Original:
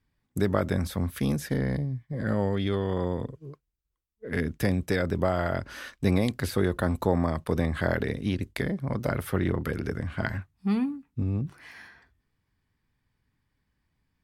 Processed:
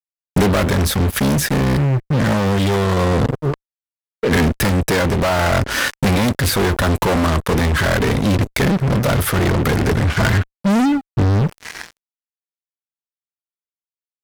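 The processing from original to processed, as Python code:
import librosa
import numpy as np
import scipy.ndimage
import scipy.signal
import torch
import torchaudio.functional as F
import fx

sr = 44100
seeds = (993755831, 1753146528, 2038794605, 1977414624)

y = fx.fuzz(x, sr, gain_db=38.0, gate_db=-45.0)
y = fx.rider(y, sr, range_db=10, speed_s=0.5)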